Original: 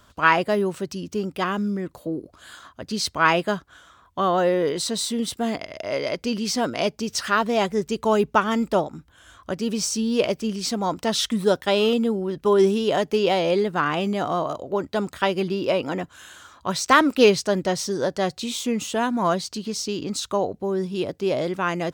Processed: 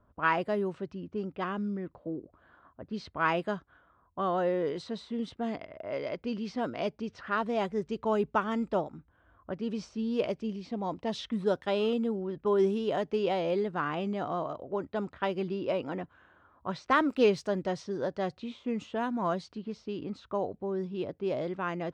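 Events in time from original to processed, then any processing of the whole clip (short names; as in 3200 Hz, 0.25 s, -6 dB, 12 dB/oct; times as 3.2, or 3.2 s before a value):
10.4–11.26 bell 1400 Hz -10 dB 0.46 oct
whole clip: LPF 2000 Hz 6 dB/oct; low-pass opened by the level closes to 940 Hz, open at -18 dBFS; gain -8 dB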